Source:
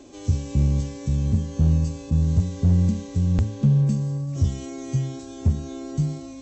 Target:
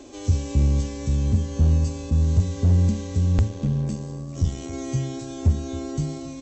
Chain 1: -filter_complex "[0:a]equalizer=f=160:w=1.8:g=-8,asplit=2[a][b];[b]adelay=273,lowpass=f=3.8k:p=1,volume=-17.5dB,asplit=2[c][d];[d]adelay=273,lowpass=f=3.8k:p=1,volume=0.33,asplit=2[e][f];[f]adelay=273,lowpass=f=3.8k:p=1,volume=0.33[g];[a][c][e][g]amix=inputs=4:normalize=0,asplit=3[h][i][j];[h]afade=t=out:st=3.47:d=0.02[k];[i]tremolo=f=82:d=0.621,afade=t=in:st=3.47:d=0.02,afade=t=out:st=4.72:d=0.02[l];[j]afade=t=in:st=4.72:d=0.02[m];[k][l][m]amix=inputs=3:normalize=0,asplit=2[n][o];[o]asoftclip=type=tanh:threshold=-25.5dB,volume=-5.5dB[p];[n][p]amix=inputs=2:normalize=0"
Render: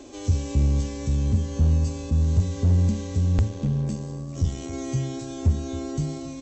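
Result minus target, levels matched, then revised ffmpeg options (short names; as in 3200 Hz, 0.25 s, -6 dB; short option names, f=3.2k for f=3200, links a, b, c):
soft clip: distortion +11 dB
-filter_complex "[0:a]equalizer=f=160:w=1.8:g=-8,asplit=2[a][b];[b]adelay=273,lowpass=f=3.8k:p=1,volume=-17.5dB,asplit=2[c][d];[d]adelay=273,lowpass=f=3.8k:p=1,volume=0.33,asplit=2[e][f];[f]adelay=273,lowpass=f=3.8k:p=1,volume=0.33[g];[a][c][e][g]amix=inputs=4:normalize=0,asplit=3[h][i][j];[h]afade=t=out:st=3.47:d=0.02[k];[i]tremolo=f=82:d=0.621,afade=t=in:st=3.47:d=0.02,afade=t=out:st=4.72:d=0.02[l];[j]afade=t=in:st=4.72:d=0.02[m];[k][l][m]amix=inputs=3:normalize=0,asplit=2[n][o];[o]asoftclip=type=tanh:threshold=-15dB,volume=-5.5dB[p];[n][p]amix=inputs=2:normalize=0"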